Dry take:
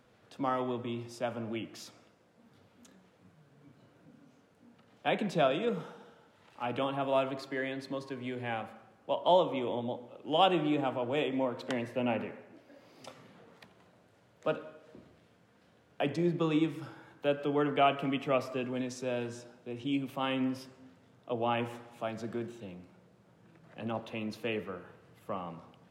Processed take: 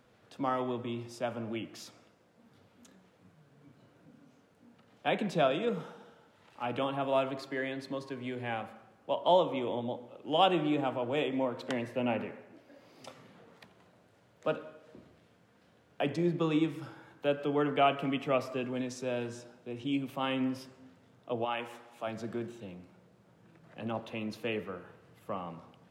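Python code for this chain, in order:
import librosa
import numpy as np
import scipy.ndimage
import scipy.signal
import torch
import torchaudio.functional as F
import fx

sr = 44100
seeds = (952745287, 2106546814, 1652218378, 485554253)

y = fx.highpass(x, sr, hz=fx.line((21.44, 1000.0), (22.06, 360.0)), slope=6, at=(21.44, 22.06), fade=0.02)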